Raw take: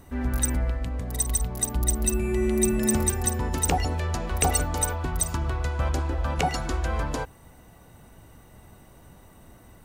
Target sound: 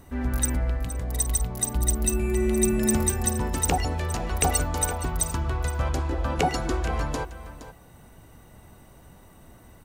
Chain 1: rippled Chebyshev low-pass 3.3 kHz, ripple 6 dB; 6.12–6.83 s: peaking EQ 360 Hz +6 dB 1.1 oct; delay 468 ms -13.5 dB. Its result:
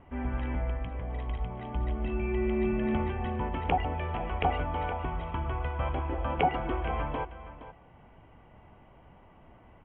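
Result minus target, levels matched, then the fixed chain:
4 kHz band -3.0 dB
6.12–6.83 s: peaking EQ 360 Hz +6 dB 1.1 oct; delay 468 ms -13.5 dB

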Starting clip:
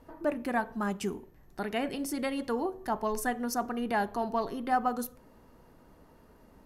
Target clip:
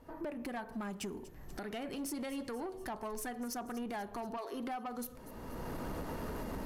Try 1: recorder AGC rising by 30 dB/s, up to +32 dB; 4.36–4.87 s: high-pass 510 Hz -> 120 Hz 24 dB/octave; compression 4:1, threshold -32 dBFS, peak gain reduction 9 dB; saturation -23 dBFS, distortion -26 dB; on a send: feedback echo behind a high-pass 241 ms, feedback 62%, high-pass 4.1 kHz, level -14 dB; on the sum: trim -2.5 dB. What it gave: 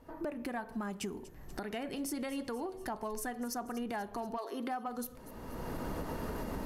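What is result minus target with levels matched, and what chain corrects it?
saturation: distortion -12 dB
recorder AGC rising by 30 dB/s, up to +32 dB; 4.36–4.87 s: high-pass 510 Hz -> 120 Hz 24 dB/octave; compression 4:1, threshold -32 dBFS, peak gain reduction 9 dB; saturation -31.5 dBFS, distortion -14 dB; on a send: feedback echo behind a high-pass 241 ms, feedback 62%, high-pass 4.1 kHz, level -14 dB; on the sum: trim -2.5 dB

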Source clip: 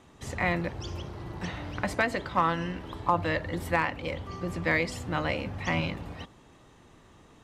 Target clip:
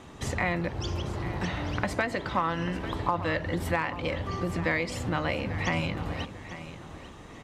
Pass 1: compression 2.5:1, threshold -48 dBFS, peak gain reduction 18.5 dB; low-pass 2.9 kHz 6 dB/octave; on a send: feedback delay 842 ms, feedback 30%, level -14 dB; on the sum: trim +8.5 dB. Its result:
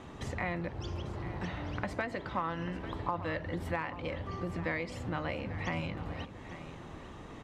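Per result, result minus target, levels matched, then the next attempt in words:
compression: peak gain reduction +6.5 dB; 8 kHz band -5.5 dB
compression 2.5:1, threshold -37.5 dBFS, peak gain reduction 12 dB; low-pass 2.9 kHz 6 dB/octave; on a send: feedback delay 842 ms, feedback 30%, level -14 dB; on the sum: trim +8.5 dB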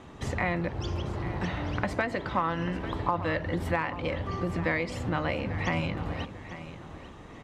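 8 kHz band -6.0 dB
compression 2.5:1, threshold -37.5 dBFS, peak gain reduction 12 dB; low-pass 9.9 kHz 6 dB/octave; on a send: feedback delay 842 ms, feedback 30%, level -14 dB; on the sum: trim +8.5 dB

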